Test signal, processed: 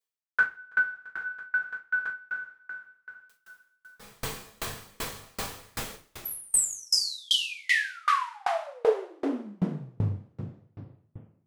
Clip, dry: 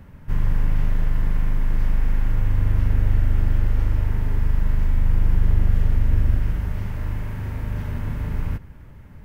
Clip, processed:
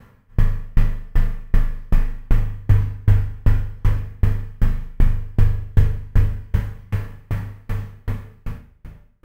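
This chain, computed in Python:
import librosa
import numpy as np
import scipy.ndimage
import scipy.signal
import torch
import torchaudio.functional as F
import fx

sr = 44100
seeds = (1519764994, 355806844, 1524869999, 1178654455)

y = fx.fade_out_tail(x, sr, length_s=1.63)
y = fx.low_shelf(y, sr, hz=78.0, db=-5.5)
y = fx.doubler(y, sr, ms=39.0, db=-6)
y = fx.rev_double_slope(y, sr, seeds[0], early_s=0.27, late_s=4.2, knee_db=-18, drr_db=-10.0)
y = fx.tremolo_decay(y, sr, direction='decaying', hz=2.6, depth_db=34)
y = F.gain(torch.from_numpy(y), -1.5).numpy()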